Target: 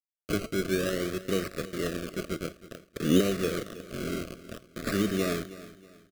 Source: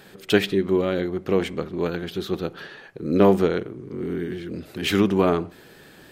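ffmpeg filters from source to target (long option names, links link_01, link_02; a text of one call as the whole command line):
ffmpeg -i in.wav -filter_complex "[0:a]highpass=74,equalizer=frequency=480:width=0.64:gain=-2.5,asettb=1/sr,asplit=3[link_01][link_02][link_03];[link_01]atrim=end=4.224[link_04];[link_02]atrim=start=4.22:end=4.87,asetpts=PTS-STARTPTS,afade=type=in:duration=0.004:curve=qsin,afade=type=out:start_time=0.646:duration=0.004:curve=qsin,acompressor=threshold=-31dB:ratio=12[link_05];[link_03]atrim=start=4.866[link_06];[link_04][link_05]acrossfade=duration=0.004:curve1=hsin:curve2=qsin[link_07];[link_07][link_06]acrossfade=duration=0.004:curve1=qsin:curve2=hsin,alimiter=limit=-11.5dB:level=0:latency=1:release=319,asplit=3[link_08][link_09][link_10];[link_08]afade=type=out:start_time=2.69:duration=0.02[link_11];[link_09]acontrast=64,afade=type=in:start_time=2.69:duration=0.02,afade=type=out:start_time=3.19:duration=0.02[link_12];[link_10]afade=type=in:start_time=3.19:duration=0.02[link_13];[link_11][link_12][link_13]amix=inputs=3:normalize=0,acrusher=bits=4:mix=0:aa=0.000001,flanger=delay=4.1:depth=4.5:regen=-85:speed=1.3:shape=sinusoidal,acrusher=samples=19:mix=1:aa=0.000001:lfo=1:lforange=11.4:lforate=0.54,asuperstop=centerf=880:order=12:qfactor=2,aecho=1:1:319|638|957:0.15|0.0509|0.0173" out.wav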